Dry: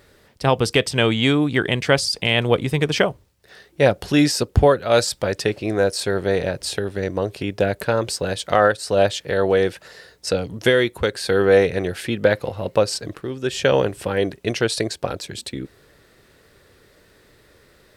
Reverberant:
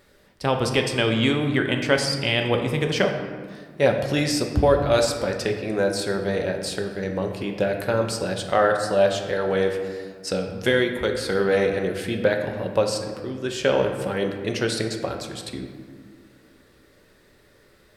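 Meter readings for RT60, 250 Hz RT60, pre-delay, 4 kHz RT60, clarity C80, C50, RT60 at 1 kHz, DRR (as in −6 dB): 1.8 s, 2.8 s, 3 ms, 0.95 s, 7.5 dB, 6.0 dB, 1.7 s, 3.5 dB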